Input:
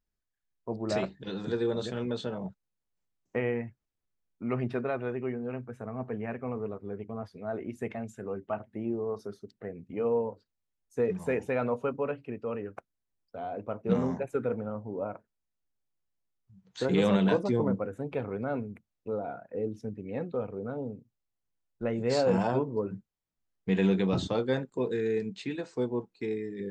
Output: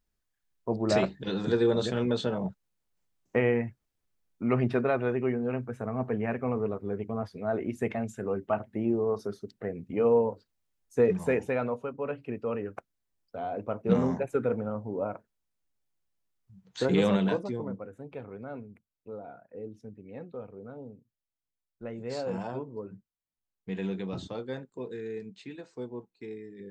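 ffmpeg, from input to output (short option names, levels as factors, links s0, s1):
-af "volume=4.73,afade=t=out:st=11.06:d=0.86:silence=0.281838,afade=t=in:st=11.92:d=0.35:silence=0.375837,afade=t=out:st=16.81:d=0.78:silence=0.298538"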